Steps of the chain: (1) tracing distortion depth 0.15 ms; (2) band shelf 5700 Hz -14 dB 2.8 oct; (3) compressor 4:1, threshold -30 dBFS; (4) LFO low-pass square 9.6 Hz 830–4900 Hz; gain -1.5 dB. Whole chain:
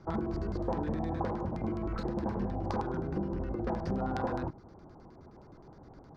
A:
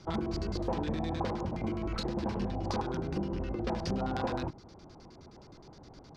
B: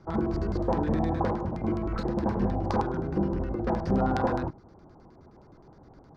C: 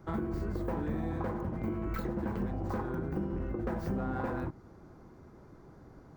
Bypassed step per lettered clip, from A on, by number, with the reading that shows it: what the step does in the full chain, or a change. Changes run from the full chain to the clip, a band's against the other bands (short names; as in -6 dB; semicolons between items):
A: 2, 4 kHz band +11.5 dB; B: 3, momentary loudness spread change -16 LU; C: 4, 1 kHz band -3.5 dB